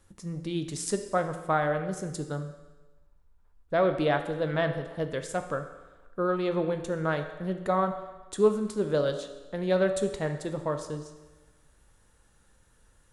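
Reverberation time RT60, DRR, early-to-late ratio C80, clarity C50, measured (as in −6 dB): 1.2 s, 6.5 dB, 11.0 dB, 9.0 dB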